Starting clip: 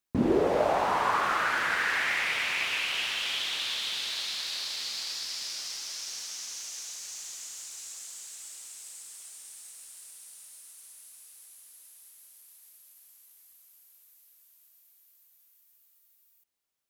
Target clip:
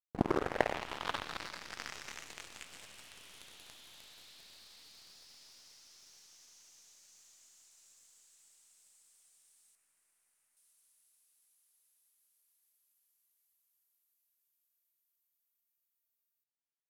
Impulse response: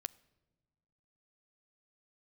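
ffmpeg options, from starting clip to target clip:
-filter_complex "[0:a]aeval=exprs='0.266*(cos(1*acos(clip(val(0)/0.266,-1,1)))-cos(1*PI/2))+0.0944*(cos(3*acos(clip(val(0)/0.266,-1,1)))-cos(3*PI/2))+0.0015*(cos(8*acos(clip(val(0)/0.266,-1,1)))-cos(8*PI/2))':c=same,asettb=1/sr,asplit=3[a][b][c];[a]atrim=end=9.754[d];[b]atrim=start=9.75:end=10.57,asetpts=PTS-STARTPTS,afade=t=in:d=0.004:c=qsin,afade=t=out:st=0.816:d=0.004:c=qsin,highshelf=f=2.8k:t=q:w=1.5:g=-7.5[e];[c]atrim=start=10.566[f];[d][e]acrossfade=d=0.004:c1=hsin:c2=qsin[g];[g][f]acrossfade=d=0.004:c1=qsin:c2=hsin,volume=3dB"

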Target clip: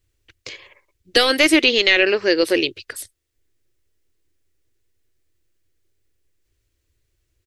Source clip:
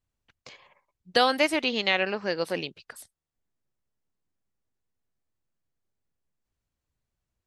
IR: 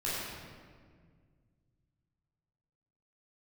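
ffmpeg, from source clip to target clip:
-af "apsyclip=17.5dB,firequalizer=gain_entry='entry(110,0);entry(170,-20);entry(330,3);entry(770,-14);entry(1900,-1)':delay=0.05:min_phase=1,volume=-3dB"

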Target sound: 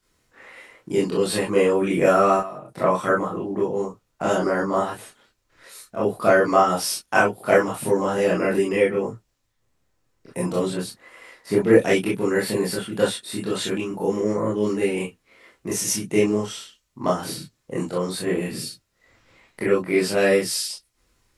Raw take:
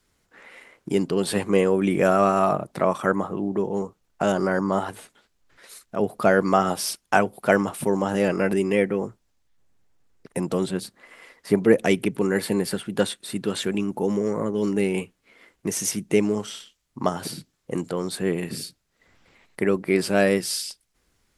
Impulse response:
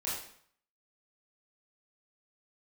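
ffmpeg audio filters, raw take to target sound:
-filter_complex "[0:a]asettb=1/sr,asplit=3[a][b][c];[a]atrim=end=2.364[d];[b]atrim=start=2.36:end=2.77,asetpts=PTS-STARTPTS,afade=t=in:d=0.004:c=qsin,afade=t=out:st=0.406:d=0.004:c=qsin,acompressor=threshold=-33dB:ratio=8[e];[c]atrim=start=2.766[f];[d][e]acrossfade=d=0.004:c1=hsin:c2=qsin[g];[g][f]acrossfade=d=0.004:c1=qsin:c2=hsin[h];[1:a]atrim=start_sample=2205,atrim=end_sample=3087[i];[h][i]afir=irnorm=-1:irlink=0"

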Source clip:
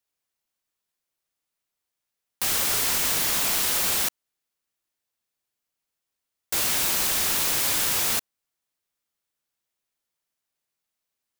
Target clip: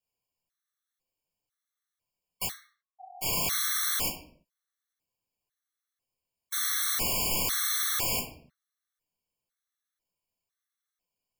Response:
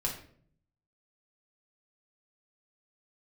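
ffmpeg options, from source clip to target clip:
-filter_complex "[0:a]asplit=3[a][b][c];[a]afade=t=out:st=2.46:d=0.02[d];[b]asuperpass=centerf=750:order=8:qfactor=7,afade=t=in:st=2.46:d=0.02,afade=t=out:st=3.21:d=0.02[e];[c]afade=t=in:st=3.21:d=0.02[f];[d][e][f]amix=inputs=3:normalize=0[g];[1:a]atrim=start_sample=2205,afade=t=out:st=0.41:d=0.01,atrim=end_sample=18522[h];[g][h]afir=irnorm=-1:irlink=0,afftfilt=real='re*gt(sin(2*PI*1*pts/sr)*(1-2*mod(floor(b*sr/1024/1100),2)),0)':imag='im*gt(sin(2*PI*1*pts/sr)*(1-2*mod(floor(b*sr/1024/1100),2)),0)':win_size=1024:overlap=0.75,volume=-5dB"

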